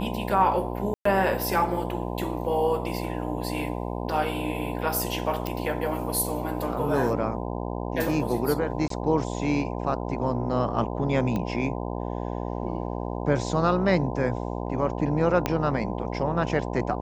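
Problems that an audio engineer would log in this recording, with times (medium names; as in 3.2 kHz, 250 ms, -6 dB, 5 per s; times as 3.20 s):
buzz 60 Hz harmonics 17 -31 dBFS
0.94–1.05 s: dropout 114 ms
5.47 s: pop
8.88–8.90 s: dropout 23 ms
11.36 s: pop -17 dBFS
15.46 s: pop -9 dBFS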